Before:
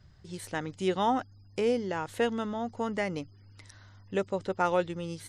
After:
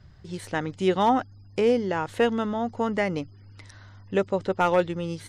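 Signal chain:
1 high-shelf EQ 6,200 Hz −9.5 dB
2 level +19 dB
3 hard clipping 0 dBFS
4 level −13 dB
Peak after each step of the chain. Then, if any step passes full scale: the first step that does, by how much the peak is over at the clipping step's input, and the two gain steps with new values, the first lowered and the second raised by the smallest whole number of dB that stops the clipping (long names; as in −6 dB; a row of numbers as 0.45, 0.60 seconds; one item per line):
−13.5, +5.5, 0.0, −13.0 dBFS
step 2, 5.5 dB
step 2 +13 dB, step 4 −7 dB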